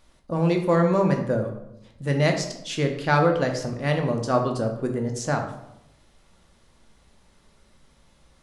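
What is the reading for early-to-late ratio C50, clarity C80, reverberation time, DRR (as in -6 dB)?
7.5 dB, 10.5 dB, 0.85 s, 3.0 dB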